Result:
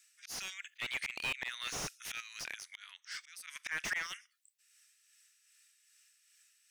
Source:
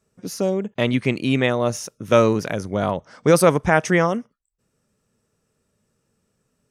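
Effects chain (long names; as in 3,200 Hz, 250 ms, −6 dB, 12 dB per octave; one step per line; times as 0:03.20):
Butterworth high-pass 1,800 Hz 36 dB per octave
0:02.20–0:03.47: downward compressor 6 to 1, threshold −45 dBFS, peak gain reduction 22 dB
volume swells 435 ms
amplitude tremolo 2.5 Hz, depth 41%
slew-rate limiting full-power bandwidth 16 Hz
level +11.5 dB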